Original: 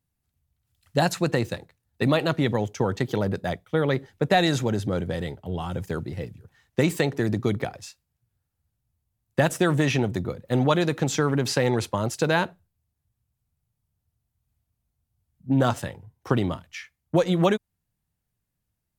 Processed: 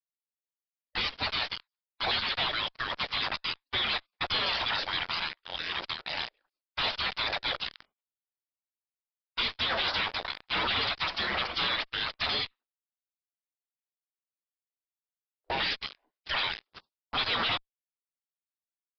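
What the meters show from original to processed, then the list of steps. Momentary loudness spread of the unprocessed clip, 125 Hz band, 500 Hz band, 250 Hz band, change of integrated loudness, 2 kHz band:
11 LU, -22.0 dB, -16.5 dB, -21.5 dB, -5.0 dB, 0.0 dB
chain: gate with hold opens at -45 dBFS; spectral gate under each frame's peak -30 dB weak; dynamic EQ 3400 Hz, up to +4 dB, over -58 dBFS, Q 6.3; in parallel at -9 dB: fuzz box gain 61 dB, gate -56 dBFS; on the sum: downsampling 11025 Hz; gain -4.5 dB

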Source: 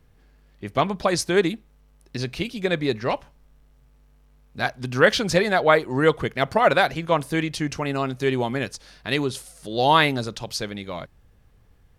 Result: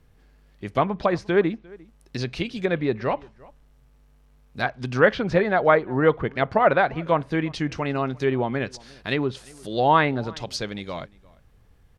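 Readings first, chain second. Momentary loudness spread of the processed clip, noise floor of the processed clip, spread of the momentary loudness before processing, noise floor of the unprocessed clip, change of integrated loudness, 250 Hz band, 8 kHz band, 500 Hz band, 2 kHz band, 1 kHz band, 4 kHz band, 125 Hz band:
13 LU, -57 dBFS, 14 LU, -57 dBFS, -1.0 dB, 0.0 dB, under -10 dB, 0.0 dB, -2.0 dB, -0.5 dB, -7.0 dB, 0.0 dB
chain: treble ducked by the level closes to 1900 Hz, closed at -19 dBFS; outdoor echo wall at 60 m, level -24 dB

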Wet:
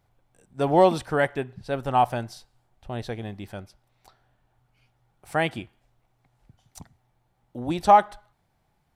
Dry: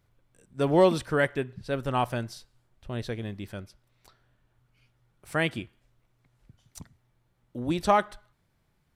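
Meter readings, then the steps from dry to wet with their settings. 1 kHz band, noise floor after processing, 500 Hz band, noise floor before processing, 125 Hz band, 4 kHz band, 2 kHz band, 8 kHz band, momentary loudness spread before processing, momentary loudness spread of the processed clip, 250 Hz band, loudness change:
+8.0 dB, -70 dBFS, +2.5 dB, -71 dBFS, 0.0 dB, 0.0 dB, +0.5 dB, 0.0 dB, 21 LU, 22 LU, +0.5 dB, +4.0 dB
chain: bell 780 Hz +11 dB 0.47 oct

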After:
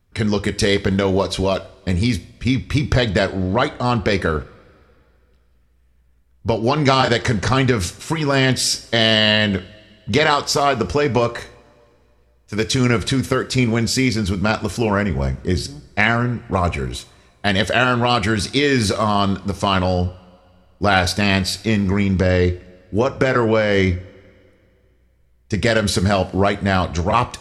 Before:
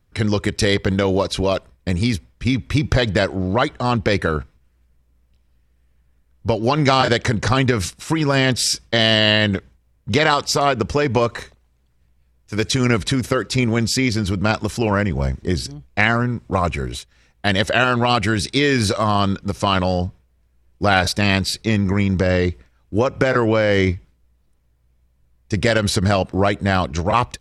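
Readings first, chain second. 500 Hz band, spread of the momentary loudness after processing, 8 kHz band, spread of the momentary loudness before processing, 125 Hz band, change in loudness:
+0.5 dB, 7 LU, +0.5 dB, 7 LU, 0.0 dB, +0.5 dB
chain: two-slope reverb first 0.37 s, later 2.5 s, from -21 dB, DRR 10.5 dB

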